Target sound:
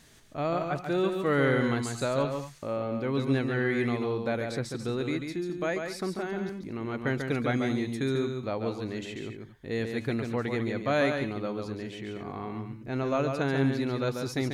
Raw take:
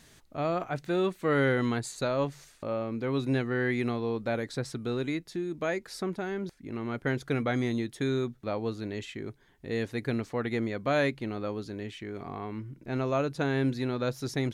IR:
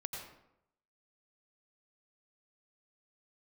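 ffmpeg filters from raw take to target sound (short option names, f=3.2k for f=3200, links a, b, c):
-filter_complex "[0:a]asplit=2[a][b];[1:a]atrim=start_sample=2205,atrim=end_sample=3969,adelay=141[c];[b][c]afir=irnorm=-1:irlink=0,volume=-2.5dB[d];[a][d]amix=inputs=2:normalize=0"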